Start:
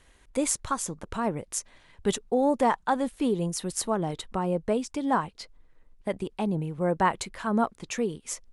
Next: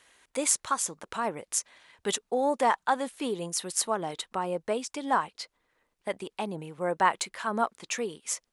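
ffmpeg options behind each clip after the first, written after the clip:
-af "highpass=f=830:p=1,volume=3dB"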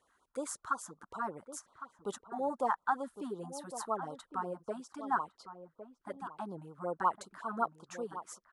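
-filter_complex "[0:a]highshelf=f=1.8k:t=q:w=3:g=-9,asplit=2[a][b];[b]adelay=1108,volume=-11dB,highshelf=f=4k:g=-24.9[c];[a][c]amix=inputs=2:normalize=0,afftfilt=real='re*(1-between(b*sr/1024,390*pow(2100/390,0.5+0.5*sin(2*PI*5.4*pts/sr))/1.41,390*pow(2100/390,0.5+0.5*sin(2*PI*5.4*pts/sr))*1.41))':imag='im*(1-between(b*sr/1024,390*pow(2100/390,0.5+0.5*sin(2*PI*5.4*pts/sr))/1.41,390*pow(2100/390,0.5+0.5*sin(2*PI*5.4*pts/sr))*1.41))':win_size=1024:overlap=0.75,volume=-8dB"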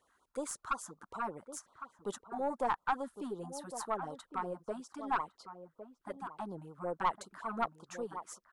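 -af "aeval=exprs='(tanh(12.6*val(0)+0.35)-tanh(0.35))/12.6':c=same,volume=1dB"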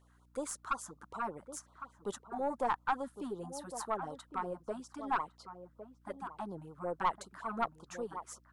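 -af "aeval=exprs='val(0)+0.000562*(sin(2*PI*60*n/s)+sin(2*PI*2*60*n/s)/2+sin(2*PI*3*60*n/s)/3+sin(2*PI*4*60*n/s)/4+sin(2*PI*5*60*n/s)/5)':c=same"

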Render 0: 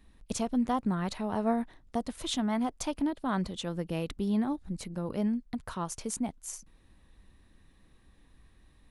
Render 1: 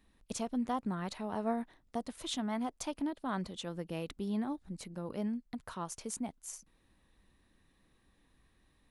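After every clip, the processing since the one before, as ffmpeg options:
-af "lowshelf=f=120:g=-8,volume=-4.5dB"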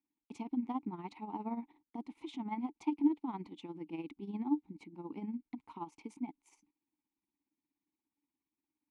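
-filter_complex "[0:a]agate=range=-18dB:threshold=-58dB:ratio=16:detection=peak,asplit=3[a][b][c];[a]bandpass=f=300:t=q:w=8,volume=0dB[d];[b]bandpass=f=870:t=q:w=8,volume=-6dB[e];[c]bandpass=f=2.24k:t=q:w=8,volume=-9dB[f];[d][e][f]amix=inputs=3:normalize=0,tremolo=f=17:d=0.65,volume=11.5dB"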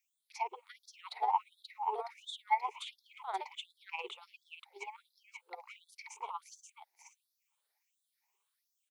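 -filter_complex "[0:a]afftfilt=real='re*pow(10,14/40*sin(2*PI*(0.72*log(max(b,1)*sr/1024/100)/log(2)-(2.3)*(pts-256)/sr)))':imag='im*pow(10,14/40*sin(2*PI*(0.72*log(max(b,1)*sr/1024/100)/log(2)-(2.3)*(pts-256)/sr)))':win_size=1024:overlap=0.75,asplit=2[a][b];[b]aecho=0:1:532:0.631[c];[a][c]amix=inputs=2:normalize=0,afftfilt=real='re*gte(b*sr/1024,370*pow(3400/370,0.5+0.5*sin(2*PI*1.4*pts/sr)))':imag='im*gte(b*sr/1024,370*pow(3400/370,0.5+0.5*sin(2*PI*1.4*pts/sr)))':win_size=1024:overlap=0.75,volume=8.5dB"

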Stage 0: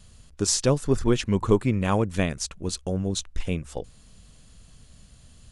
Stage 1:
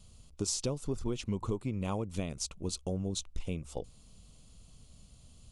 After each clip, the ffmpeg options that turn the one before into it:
-af "equalizer=f=1.7k:t=o:w=0.46:g=-14,acompressor=threshold=-24dB:ratio=12,volume=-5dB"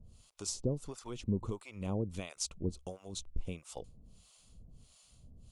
-filter_complex "[0:a]acrossover=split=650[a][b];[a]aeval=exprs='val(0)*(1-1/2+1/2*cos(2*PI*1.5*n/s))':c=same[c];[b]aeval=exprs='val(0)*(1-1/2-1/2*cos(2*PI*1.5*n/s))':c=same[d];[c][d]amix=inputs=2:normalize=0,volume=2dB"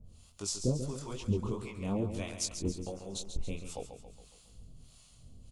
-filter_complex "[0:a]flanger=delay=19.5:depth=6.2:speed=2.4,asplit=2[a][b];[b]aecho=0:1:138|276|414|552|690|828:0.355|0.181|0.0923|0.0471|0.024|0.0122[c];[a][c]amix=inputs=2:normalize=0,volume=5.5dB"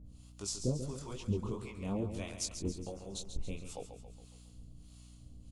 -af "aeval=exprs='val(0)+0.00282*(sin(2*PI*60*n/s)+sin(2*PI*2*60*n/s)/2+sin(2*PI*3*60*n/s)/3+sin(2*PI*4*60*n/s)/4+sin(2*PI*5*60*n/s)/5)':c=same,volume=-3dB"

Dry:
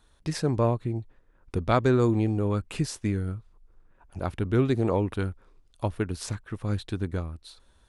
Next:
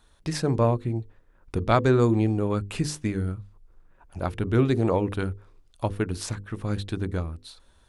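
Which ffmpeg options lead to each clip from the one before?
-af "bandreject=f=50:t=h:w=6,bandreject=f=100:t=h:w=6,bandreject=f=150:t=h:w=6,bandreject=f=200:t=h:w=6,bandreject=f=250:t=h:w=6,bandreject=f=300:t=h:w=6,bandreject=f=350:t=h:w=6,bandreject=f=400:t=h:w=6,bandreject=f=450:t=h:w=6,bandreject=f=500:t=h:w=6,volume=2.5dB"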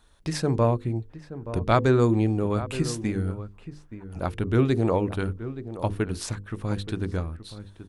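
-filter_complex "[0:a]asplit=2[a][b];[b]adelay=874.6,volume=-13dB,highshelf=f=4k:g=-19.7[c];[a][c]amix=inputs=2:normalize=0"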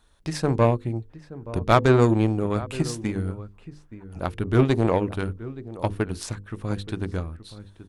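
-af "aeval=exprs='0.501*(cos(1*acos(clip(val(0)/0.501,-1,1)))-cos(1*PI/2))+0.0316*(cos(7*acos(clip(val(0)/0.501,-1,1)))-cos(7*PI/2))':c=same,volume=3.5dB"

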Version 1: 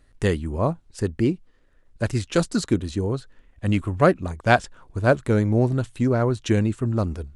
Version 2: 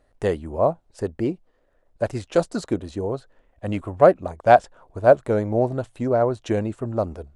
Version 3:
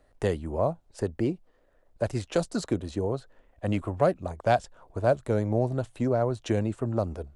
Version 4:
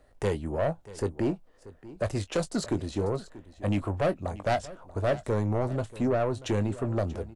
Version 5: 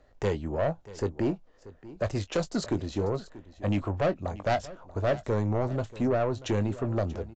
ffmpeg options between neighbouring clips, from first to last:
-af "equalizer=f=650:t=o:w=1.4:g=15,volume=-7.5dB"
-filter_complex "[0:a]acrossover=split=180|3000[a][b][c];[b]acompressor=threshold=-28dB:ratio=2[d];[a][d][c]amix=inputs=3:normalize=0"
-filter_complex "[0:a]asoftclip=type=tanh:threshold=-22.5dB,asplit=2[a][b];[b]adelay=20,volume=-12dB[c];[a][c]amix=inputs=2:normalize=0,aecho=1:1:635:0.126,volume=2dB"
-af "aresample=16000,aresample=44100"

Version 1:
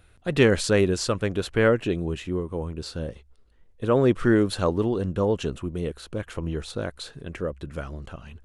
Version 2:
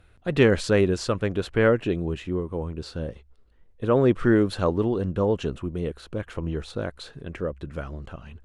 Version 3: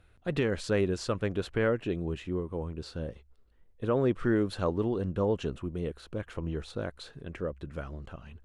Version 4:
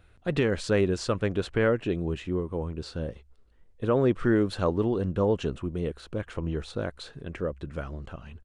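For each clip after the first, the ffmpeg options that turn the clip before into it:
-af "aemphasis=mode=reproduction:type=cd"
-af "alimiter=limit=-11.5dB:level=0:latency=1:release=441,volume=-5dB"
-af "aresample=22050,aresample=44100,volume=3.5dB"

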